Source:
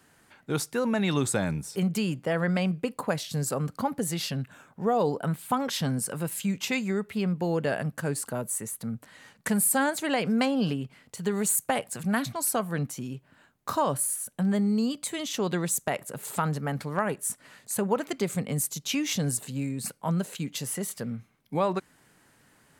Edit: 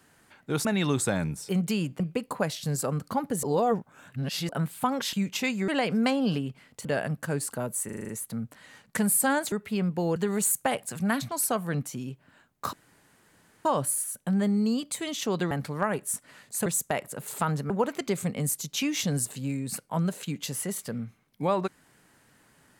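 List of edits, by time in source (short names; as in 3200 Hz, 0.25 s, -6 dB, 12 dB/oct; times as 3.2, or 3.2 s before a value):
0.65–0.92 cut
2.27–2.68 cut
4.11–5.17 reverse
5.81–6.41 cut
6.96–7.6 swap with 10.03–11.2
8.6 stutter 0.04 s, 7 plays
13.77 insert room tone 0.92 s
15.63–16.67 move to 17.82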